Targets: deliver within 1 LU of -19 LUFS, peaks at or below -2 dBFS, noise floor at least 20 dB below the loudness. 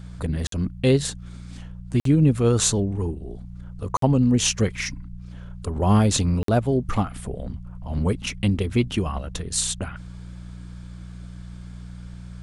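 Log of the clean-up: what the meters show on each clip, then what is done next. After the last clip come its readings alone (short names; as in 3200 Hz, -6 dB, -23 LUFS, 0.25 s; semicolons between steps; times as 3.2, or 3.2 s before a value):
dropouts 4; longest dropout 53 ms; hum 60 Hz; harmonics up to 180 Hz; hum level -35 dBFS; loudness -23.0 LUFS; peak -6.5 dBFS; loudness target -19.0 LUFS
-> interpolate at 0.47/2/3.97/6.43, 53 ms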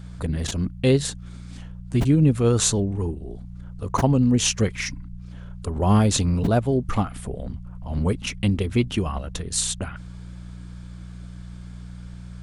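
dropouts 0; hum 60 Hz; harmonics up to 180 Hz; hum level -35 dBFS
-> de-hum 60 Hz, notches 3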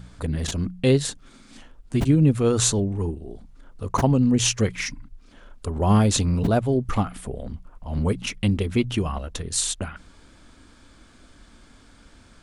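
hum none; loudness -23.0 LUFS; peak -6.5 dBFS; loudness target -19.0 LUFS
-> gain +4 dB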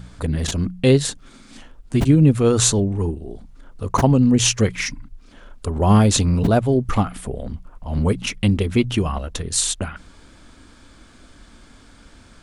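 loudness -19.0 LUFS; peak -2.5 dBFS; noise floor -48 dBFS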